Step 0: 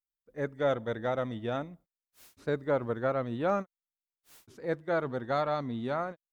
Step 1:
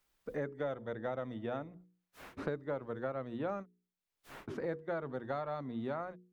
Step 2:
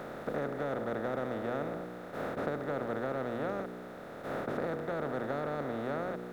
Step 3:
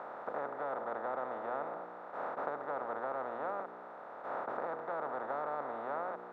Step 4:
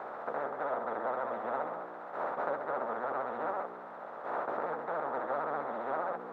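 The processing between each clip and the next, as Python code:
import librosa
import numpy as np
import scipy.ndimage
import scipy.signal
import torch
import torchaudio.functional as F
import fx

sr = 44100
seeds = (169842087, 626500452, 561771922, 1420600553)

y1 = fx.high_shelf(x, sr, hz=3800.0, db=-9.5)
y1 = fx.hum_notches(y1, sr, base_hz=60, count=8)
y1 = fx.band_squash(y1, sr, depth_pct=100)
y1 = F.gain(torch.from_numpy(y1), -7.5).numpy()
y2 = fx.bin_compress(y1, sr, power=0.2)
y2 = F.gain(torch.from_numpy(y2), -4.0).numpy()
y3 = fx.bandpass_q(y2, sr, hz=950.0, q=2.7)
y3 = F.gain(torch.from_numpy(y3), 6.0).numpy()
y4 = fx.chorus_voices(y3, sr, voices=6, hz=0.33, base_ms=15, depth_ms=2.9, mix_pct=35)
y4 = fx.vibrato(y4, sr, rate_hz=15.0, depth_cents=93.0)
y4 = F.gain(torch.from_numpy(y4), 6.0).numpy()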